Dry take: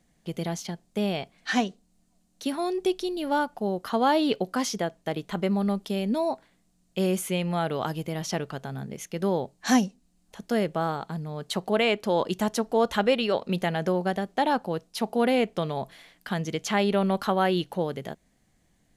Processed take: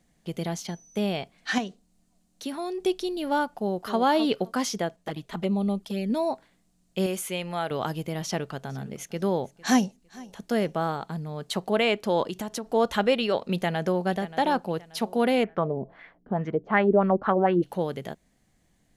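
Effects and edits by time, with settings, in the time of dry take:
0.57–0.98 s: whistle 6 kHz -53 dBFS
1.58–2.80 s: compression 1.5:1, threshold -35 dBFS
3.53–3.99 s: echo throw 260 ms, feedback 15%, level -10 dB
4.96–6.10 s: touch-sensitive flanger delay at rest 11.8 ms, full sweep at -22.5 dBFS
7.06–7.71 s: peaking EQ 130 Hz -8.5 dB 2.9 oct
8.23–10.85 s: feedback delay 455 ms, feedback 27%, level -22 dB
12.23–12.71 s: compression, threshold -28 dBFS
13.41–14.02 s: echo throw 580 ms, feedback 35%, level -14.5 dB
15.43–17.62 s: LFO low-pass sine 1.5 Hz -> 5.5 Hz 340–1900 Hz

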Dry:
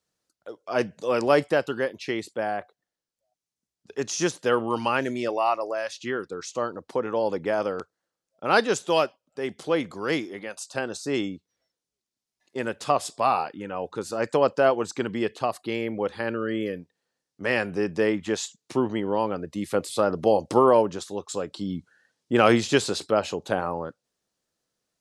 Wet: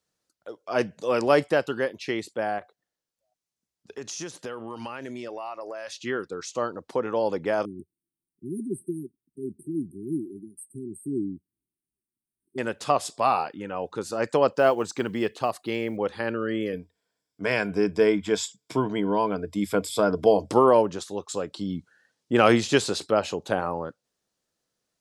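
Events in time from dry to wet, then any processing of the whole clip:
2.58–5.88 s: compression, threshold -32 dBFS
7.65–12.58 s: brick-wall FIR band-stop 400–8100 Hz
14.56–15.97 s: companded quantiser 8-bit
16.72–20.51 s: rippled EQ curve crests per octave 1.7, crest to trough 10 dB

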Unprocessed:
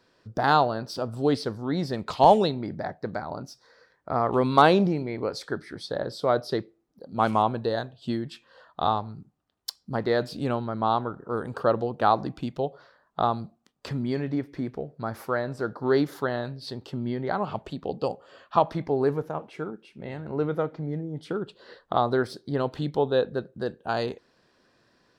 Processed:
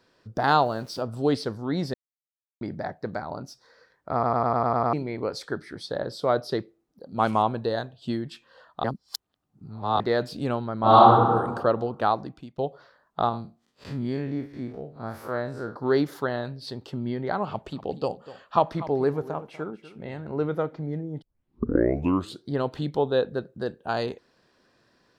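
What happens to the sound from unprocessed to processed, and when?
0.61–1.01 s: small samples zeroed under -48.5 dBFS
1.94–2.61 s: mute
4.13 s: stutter in place 0.10 s, 8 plays
8.84–10.00 s: reverse
10.80–11.30 s: reverb throw, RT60 1.3 s, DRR -11.5 dB
11.93–12.58 s: fade out, to -18.5 dB
13.29–15.76 s: spectral blur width 91 ms
17.48–20.10 s: delay 244 ms -16 dB
21.22 s: tape start 1.27 s

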